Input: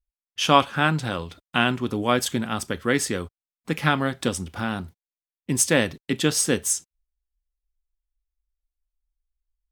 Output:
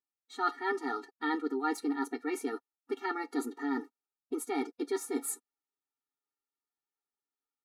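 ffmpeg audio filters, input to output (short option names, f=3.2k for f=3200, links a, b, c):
-af "bandreject=f=5.7k:w=25,asetrate=56007,aresample=44100,highshelf=f=2k:t=q:w=1.5:g=-9.5,aecho=1:1:7.3:0.51,areverse,acompressor=threshold=-34dB:ratio=6,areverse,lowpass=11k,afftfilt=real='re*eq(mod(floor(b*sr/1024/240),2),1)':imag='im*eq(mod(floor(b*sr/1024/240),2),1)':win_size=1024:overlap=0.75,volume=6.5dB"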